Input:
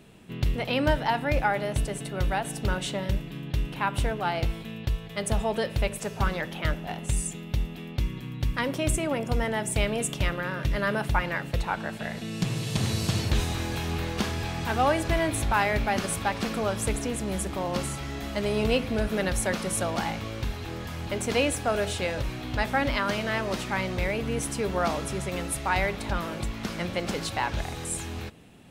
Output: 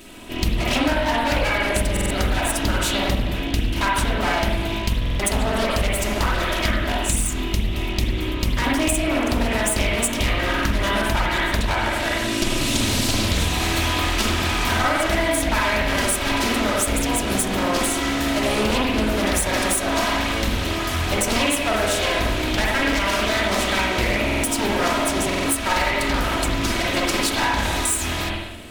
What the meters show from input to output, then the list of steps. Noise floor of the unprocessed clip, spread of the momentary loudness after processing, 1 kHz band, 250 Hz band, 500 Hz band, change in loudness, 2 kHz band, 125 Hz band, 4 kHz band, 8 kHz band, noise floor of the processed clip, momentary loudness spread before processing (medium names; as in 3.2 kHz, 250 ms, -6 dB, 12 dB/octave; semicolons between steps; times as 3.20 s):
-39 dBFS, 4 LU, +6.5 dB, +7.5 dB, +5.0 dB, +7.5 dB, +9.0 dB, +4.0 dB, +11.5 dB, +10.0 dB, -26 dBFS, 7 LU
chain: comb filter that takes the minimum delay 3.1 ms; treble shelf 3.5 kHz +12 dB; spring tank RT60 1 s, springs 47/51 ms, chirp 55 ms, DRR -4.5 dB; compression, threshold -25 dBFS, peak gain reduction 10.5 dB; buffer glitch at 1.92/5.01/24.25/25.27 s, samples 2048, times 3; loudspeaker Doppler distortion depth 0.32 ms; trim +8 dB